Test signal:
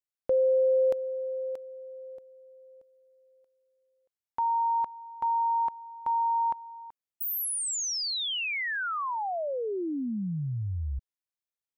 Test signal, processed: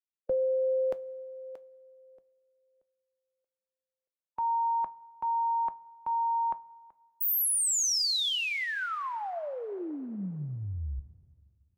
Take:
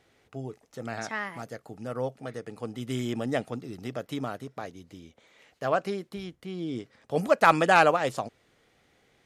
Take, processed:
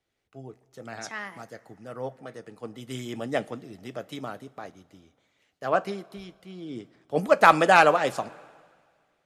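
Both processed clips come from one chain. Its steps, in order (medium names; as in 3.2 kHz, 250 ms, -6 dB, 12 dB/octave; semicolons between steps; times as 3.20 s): two-slope reverb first 0.22 s, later 3.2 s, from -18 dB, DRR 11.5 dB; harmonic-percussive split harmonic -4 dB; three bands expanded up and down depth 40%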